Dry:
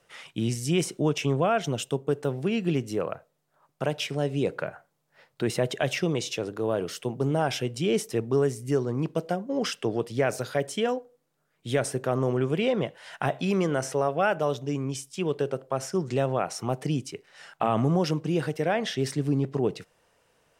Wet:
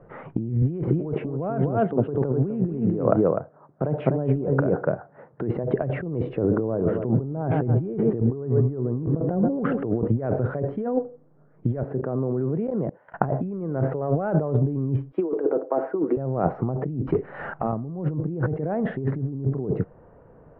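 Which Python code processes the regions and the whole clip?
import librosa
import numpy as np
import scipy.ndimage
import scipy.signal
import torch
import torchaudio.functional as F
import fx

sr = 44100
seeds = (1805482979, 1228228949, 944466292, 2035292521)

y = fx.chain(x, sr, fx.highpass(hz=160.0, slope=6),
    fx.echo_single(ms=251, db=-6.5), at=(0.62, 5.64))
y = fx.chain(y, sr, fx.lowpass(hz=3200.0, slope=12),
    fx.echo_feedback(ms=134, feedback_pct=59, wet_db=-17), at=(6.38, 10.08))
y = fx.chain(y, sr, fx.highpass(hz=130.0, slope=12),
    fx.level_steps(step_db=22), at=(11.83, 13.14))
y = fx.chain(y, sr, fx.steep_highpass(hz=270.0, slope=36),
    fx.high_shelf(hz=4400.0, db=-6.5),
    fx.comb(ms=6.3, depth=0.54), at=(15.12, 16.17))
y = fx.chain(y, sr, fx.high_shelf(hz=2100.0, db=11.0),
    fx.over_compress(threshold_db=-30.0, ratio=-0.5),
    fx.overload_stage(gain_db=29.0), at=(17.07, 17.73))
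y = scipy.signal.sosfilt(scipy.signal.cheby2(4, 70, 6500.0, 'lowpass', fs=sr, output='sos'), y)
y = fx.tilt_shelf(y, sr, db=9.5, hz=770.0)
y = fx.over_compress(y, sr, threshold_db=-30.0, ratio=-1.0)
y = y * 10.0 ** (5.5 / 20.0)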